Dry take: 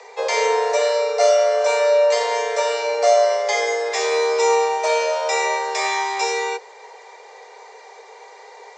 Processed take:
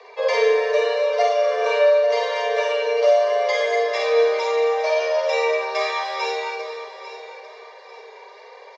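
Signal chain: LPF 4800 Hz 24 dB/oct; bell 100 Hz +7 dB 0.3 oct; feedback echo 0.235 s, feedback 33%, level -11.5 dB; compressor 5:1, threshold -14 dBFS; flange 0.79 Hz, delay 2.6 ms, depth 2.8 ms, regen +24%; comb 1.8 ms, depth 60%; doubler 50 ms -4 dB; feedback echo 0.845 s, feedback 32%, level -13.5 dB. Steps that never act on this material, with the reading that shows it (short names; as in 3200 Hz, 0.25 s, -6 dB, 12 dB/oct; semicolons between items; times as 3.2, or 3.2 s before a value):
bell 100 Hz: input band starts at 380 Hz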